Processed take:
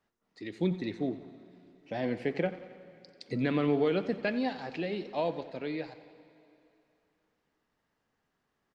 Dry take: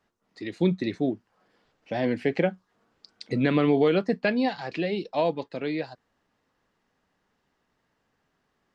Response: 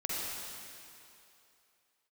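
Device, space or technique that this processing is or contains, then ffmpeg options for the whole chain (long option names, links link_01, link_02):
saturated reverb return: -filter_complex "[0:a]asplit=2[link_01][link_02];[1:a]atrim=start_sample=2205[link_03];[link_02][link_03]afir=irnorm=-1:irlink=0,asoftclip=type=tanh:threshold=-22dB,volume=-17.5dB[link_04];[link_01][link_04]amix=inputs=2:normalize=0,aecho=1:1:89|178|267|356|445:0.168|0.0923|0.0508|0.0279|0.0154,volume=-7dB"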